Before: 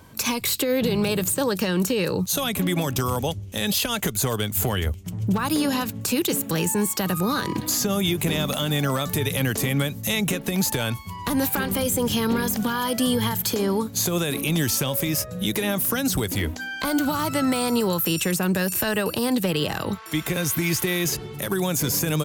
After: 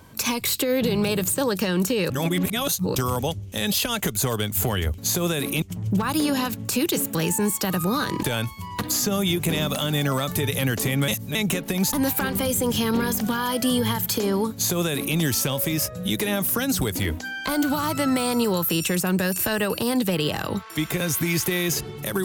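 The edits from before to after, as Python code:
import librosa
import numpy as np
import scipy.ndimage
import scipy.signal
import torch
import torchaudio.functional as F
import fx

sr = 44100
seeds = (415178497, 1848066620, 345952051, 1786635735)

y = fx.edit(x, sr, fx.reverse_span(start_s=2.1, length_s=0.85),
    fx.reverse_span(start_s=9.86, length_s=0.27),
    fx.move(start_s=10.71, length_s=0.58, to_s=7.59),
    fx.duplicate(start_s=13.89, length_s=0.64, to_s=4.98), tone=tone)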